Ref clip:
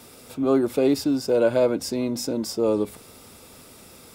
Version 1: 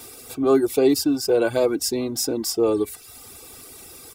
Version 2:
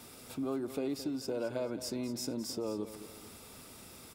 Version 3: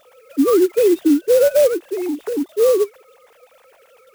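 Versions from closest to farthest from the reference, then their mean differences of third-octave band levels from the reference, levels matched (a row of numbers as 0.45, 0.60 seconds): 1, 2, 3; 4.0, 6.5, 13.5 decibels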